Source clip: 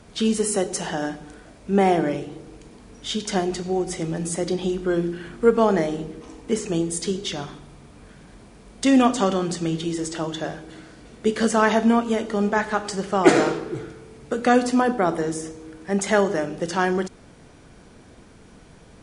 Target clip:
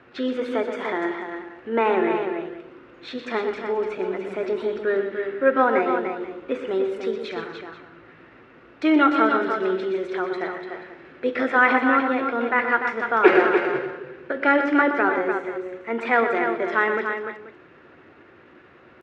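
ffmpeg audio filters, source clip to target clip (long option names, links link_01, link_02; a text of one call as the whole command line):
ffmpeg -i in.wav -filter_complex "[0:a]highpass=110,equalizer=frequency=170:width_type=q:width=4:gain=-9,equalizer=frequency=310:width_type=q:width=4:gain=8,equalizer=frequency=1200:width_type=q:width=4:gain=7,lowpass=frequency=2000:width=0.5412,lowpass=frequency=2000:width=1.3066,bandreject=frequency=710:width=18,asetrate=50951,aresample=44100,atempo=0.865537,asplit=2[link_01][link_02];[link_02]aecho=0:1:122|162|295|485:0.355|0.1|0.473|0.141[link_03];[link_01][link_03]amix=inputs=2:normalize=0,crystalizer=i=7.5:c=0,volume=-5dB" out.wav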